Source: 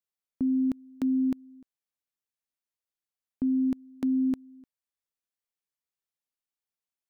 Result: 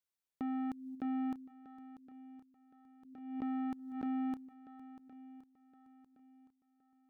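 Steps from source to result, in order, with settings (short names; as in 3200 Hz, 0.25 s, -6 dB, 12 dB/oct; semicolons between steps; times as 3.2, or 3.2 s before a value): gate -45 dBFS, range -39 dB; soft clip -33.5 dBFS, distortion -10 dB; swung echo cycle 1.067 s, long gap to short 1.5:1, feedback 34%, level -15 dB; backwards sustainer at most 57 dB/s; gain -2 dB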